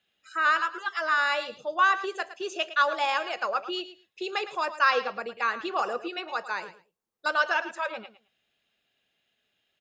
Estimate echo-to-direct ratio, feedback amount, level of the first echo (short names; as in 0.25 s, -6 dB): -13.5 dB, 18%, -13.5 dB